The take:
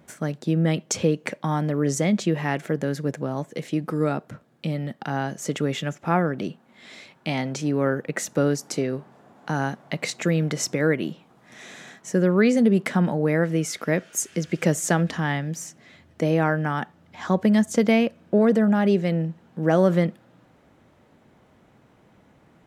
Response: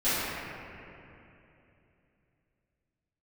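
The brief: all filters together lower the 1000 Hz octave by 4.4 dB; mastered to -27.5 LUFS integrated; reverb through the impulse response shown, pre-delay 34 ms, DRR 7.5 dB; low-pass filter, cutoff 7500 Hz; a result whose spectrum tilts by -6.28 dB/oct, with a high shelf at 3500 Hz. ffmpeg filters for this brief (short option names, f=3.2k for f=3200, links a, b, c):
-filter_complex "[0:a]lowpass=7.5k,equalizer=f=1k:t=o:g=-6,highshelf=f=3.5k:g=-4,asplit=2[a][b];[1:a]atrim=start_sample=2205,adelay=34[c];[b][c]afir=irnorm=-1:irlink=0,volume=-22dB[d];[a][d]amix=inputs=2:normalize=0,volume=-3.5dB"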